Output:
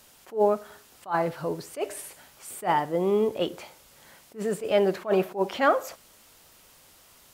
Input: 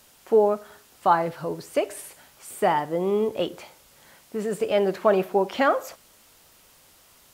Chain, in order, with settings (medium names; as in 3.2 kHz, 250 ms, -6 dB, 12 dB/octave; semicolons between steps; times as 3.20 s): attacks held to a fixed rise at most 250 dB/s